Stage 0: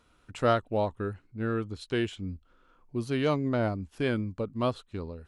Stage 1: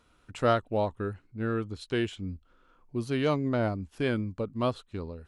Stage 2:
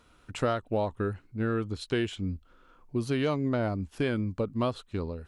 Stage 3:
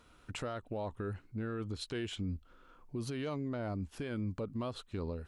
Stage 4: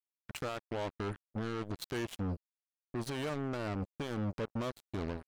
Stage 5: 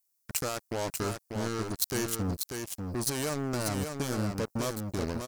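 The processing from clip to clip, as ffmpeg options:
ffmpeg -i in.wav -af anull out.wav
ffmpeg -i in.wav -af "acompressor=threshold=-28dB:ratio=6,volume=4dB" out.wav
ffmpeg -i in.wav -af "alimiter=level_in=4.5dB:limit=-24dB:level=0:latency=1:release=86,volume=-4.5dB,volume=-1.5dB" out.wav
ffmpeg -i in.wav -af "acrusher=bits=5:mix=0:aa=0.5" out.wav
ffmpeg -i in.wav -af "aexciter=amount=4.4:drive=6.3:freq=4700,aecho=1:1:591:0.531,volume=4dB" out.wav

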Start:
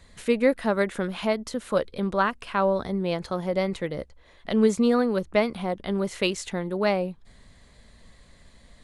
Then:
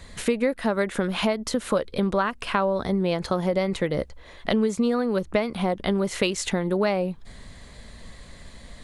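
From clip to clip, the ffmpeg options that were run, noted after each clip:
ffmpeg -i in.wav -af "acompressor=threshold=-29dB:ratio=6,volume=9dB" out.wav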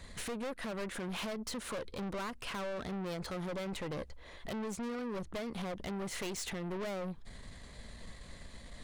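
ffmpeg -i in.wav -af "aeval=exprs='(tanh(39.8*val(0)+0.35)-tanh(0.35))/39.8':channel_layout=same,volume=-4.5dB" out.wav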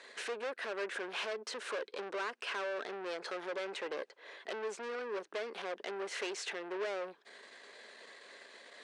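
ffmpeg -i in.wav -af "highpass=frequency=370:width=0.5412,highpass=frequency=370:width=1.3066,equalizer=frequency=410:width_type=q:width=4:gain=6,equalizer=frequency=1600:width_type=q:width=4:gain=7,equalizer=frequency=2600:width_type=q:width=4:gain=4,equalizer=frequency=7100:width_type=q:width=4:gain=-4,lowpass=frequency=8000:width=0.5412,lowpass=frequency=8000:width=1.3066" out.wav

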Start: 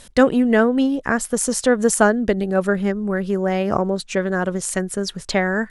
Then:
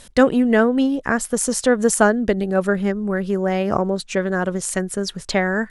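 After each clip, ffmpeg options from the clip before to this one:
ffmpeg -i in.wav -af anull out.wav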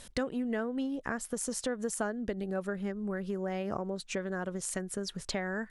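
ffmpeg -i in.wav -af "acompressor=threshold=-28dB:ratio=3,volume=-6dB" out.wav

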